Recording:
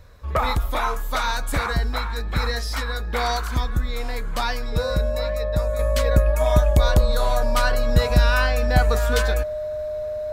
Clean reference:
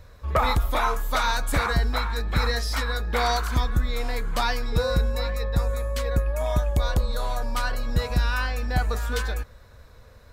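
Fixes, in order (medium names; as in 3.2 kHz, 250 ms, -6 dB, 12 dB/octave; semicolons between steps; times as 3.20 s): band-stop 610 Hz, Q 30; trim 0 dB, from 5.79 s -6 dB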